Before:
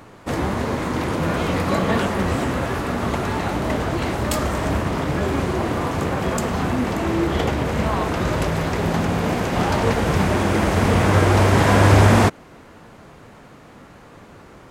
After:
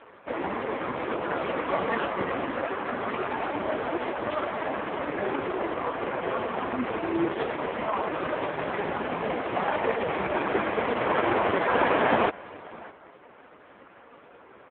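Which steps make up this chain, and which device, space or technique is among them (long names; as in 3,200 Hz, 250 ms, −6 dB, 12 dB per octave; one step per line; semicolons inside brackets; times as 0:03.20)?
satellite phone (band-pass filter 350–3,200 Hz; single-tap delay 605 ms −21 dB; AMR narrowband 4.75 kbit/s 8,000 Hz)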